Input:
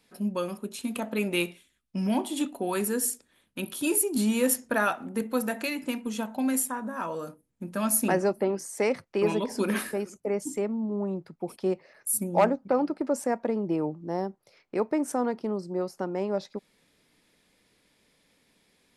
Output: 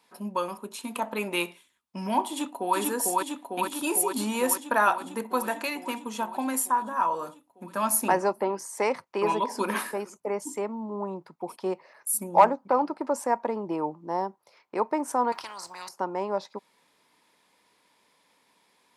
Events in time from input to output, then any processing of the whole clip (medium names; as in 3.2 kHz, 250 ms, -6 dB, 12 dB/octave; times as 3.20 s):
2.28–2.77 s: echo throw 450 ms, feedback 75%, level -1 dB
15.32–15.89 s: spectrum-flattening compressor 10:1
whole clip: high-pass 360 Hz 6 dB/octave; peaking EQ 970 Hz +13 dB 0.52 oct